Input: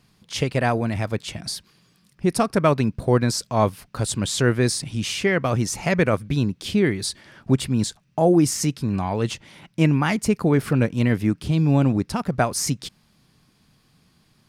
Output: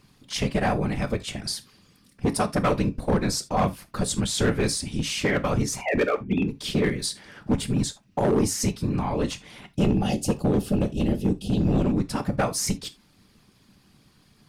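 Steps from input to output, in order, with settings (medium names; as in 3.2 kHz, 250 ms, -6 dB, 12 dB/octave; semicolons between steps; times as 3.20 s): 5.81–6.48 s: formants replaced by sine waves; whisper effect; 9.76–11.82 s: time-frequency box 870–2500 Hz -16 dB; in parallel at 0 dB: compression 4:1, threshold -31 dBFS, peak gain reduction 16.5 dB; on the sum: hard clipper -12 dBFS, distortion -15 dB; on a send at -9.5 dB: reverberation, pre-delay 3 ms; on the sum: trim -5 dB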